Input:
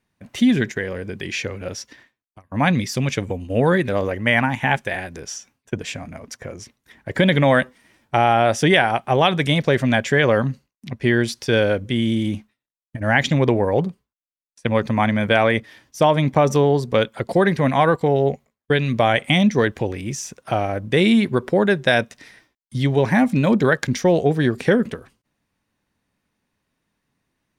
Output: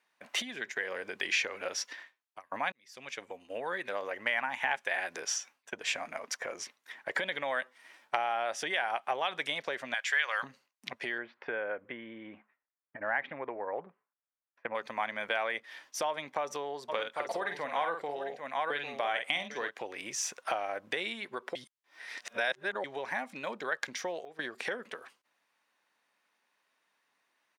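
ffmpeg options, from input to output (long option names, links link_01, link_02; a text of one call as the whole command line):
ffmpeg -i in.wav -filter_complex "[0:a]asettb=1/sr,asplit=3[link_01][link_02][link_03];[link_01]atrim=end=9.944[link_04];[link_02]atrim=start=9.94:end=10.43,asetpts=PTS-STARTPTS,afade=type=in:duration=0.004:curve=qsin,afade=type=out:start_time=0.486:duration=0.004:curve=qsin,highpass=1400[link_05];[link_03]atrim=start=10.426[link_06];[link_04][link_05]acrossfade=duration=0.004:curve1=hsin:curve2=qsin[link_07];[link_07][link_06]acrossfade=duration=0.004:curve1=qsin:curve2=hsin,asettb=1/sr,asplit=3[link_08][link_09][link_10];[link_08]atrim=end=11.184[link_11];[link_09]atrim=start=11.18:end=14.75,asetpts=PTS-STARTPTS,afade=type=in:duration=0.004:curve=qsin,afade=type=out:start_time=3.566:duration=0.004:curve=qsin,lowpass=frequency=2000:width=0.5412,lowpass=frequency=2000:width=1.3066[link_12];[link_10]atrim=start=14.746[link_13];[link_11][link_12]acrossfade=duration=0.004:curve1=hsin:curve2=qsin[link_14];[link_14][link_13]acrossfade=duration=0.004:curve1=qsin:curve2=hsin,asplit=3[link_15][link_16][link_17];[link_15]afade=type=out:start_time=16.88:duration=0.02[link_18];[link_16]aecho=1:1:48|799:0.447|0.251,afade=type=in:start_time=16.88:duration=0.02,afade=type=out:start_time=19.69:duration=0.02[link_19];[link_17]afade=type=in:start_time=19.69:duration=0.02[link_20];[link_18][link_19][link_20]amix=inputs=3:normalize=0,asplit=6[link_21][link_22][link_23][link_24][link_25][link_26];[link_21]atrim=end=2.72,asetpts=PTS-STARTPTS,afade=type=out:start_time=2.716:duration=0.004:curve=hsin[link_27];[link_22]atrim=start=2.72:end=21.552,asetpts=PTS-STARTPTS,afade=type=in:duration=2.23[link_28];[link_23]atrim=start=21.548:end=22.842,asetpts=PTS-STARTPTS,areverse[link_29];[link_24]atrim=start=22.838:end=24.25,asetpts=PTS-STARTPTS,afade=type=out:start_time=1.042:duration=0.37:curve=log:silence=0.11885[link_30];[link_25]atrim=start=24.25:end=24.39,asetpts=PTS-STARTPTS,volume=-18.5dB[link_31];[link_26]atrim=start=24.39,asetpts=PTS-STARTPTS,afade=type=in:duration=0.37:curve=log:silence=0.11885[link_32];[link_27][link_28]concat=n=2:v=0:a=1[link_33];[link_33][link_29]acrossfade=duration=0.004:curve1=hsin:curve2=hsin[link_34];[link_30][link_31][link_32]concat=n=3:v=0:a=1[link_35];[link_34][link_35]acrossfade=duration=0.004:curve1=hsin:curve2=hsin,highshelf=frequency=5300:gain=-8,acompressor=threshold=-28dB:ratio=10,highpass=760,volume=3.5dB" out.wav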